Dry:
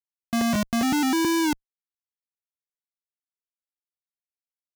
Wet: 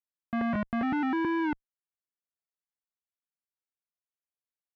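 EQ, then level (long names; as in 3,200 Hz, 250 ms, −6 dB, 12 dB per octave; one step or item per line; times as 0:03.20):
transistor ladder low-pass 2,400 Hz, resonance 25%
0.0 dB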